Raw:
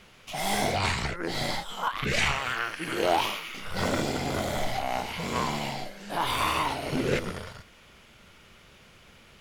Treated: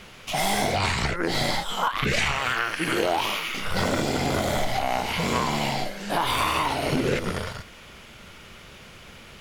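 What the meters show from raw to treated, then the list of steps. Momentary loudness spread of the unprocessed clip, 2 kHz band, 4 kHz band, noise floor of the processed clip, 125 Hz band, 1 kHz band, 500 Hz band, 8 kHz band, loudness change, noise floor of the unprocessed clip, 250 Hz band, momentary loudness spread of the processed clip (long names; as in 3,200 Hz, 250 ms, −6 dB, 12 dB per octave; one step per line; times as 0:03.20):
9 LU, +4.0 dB, +4.0 dB, −46 dBFS, +4.5 dB, +3.5 dB, +3.5 dB, +4.0 dB, +4.0 dB, −55 dBFS, +4.5 dB, 21 LU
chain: downward compressor, threshold −29 dBFS, peak gain reduction 9.5 dB
level +8.5 dB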